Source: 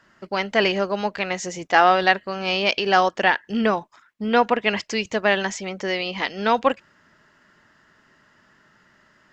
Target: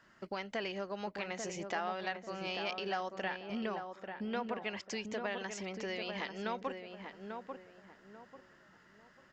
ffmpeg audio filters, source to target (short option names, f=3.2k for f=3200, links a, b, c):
-filter_complex "[0:a]acompressor=threshold=-33dB:ratio=3,asplit=2[a][b];[b]adelay=842,lowpass=f=1.4k:p=1,volume=-5dB,asplit=2[c][d];[d]adelay=842,lowpass=f=1.4k:p=1,volume=0.33,asplit=2[e][f];[f]adelay=842,lowpass=f=1.4k:p=1,volume=0.33,asplit=2[g][h];[h]adelay=842,lowpass=f=1.4k:p=1,volume=0.33[i];[a][c][e][g][i]amix=inputs=5:normalize=0,volume=-6.5dB"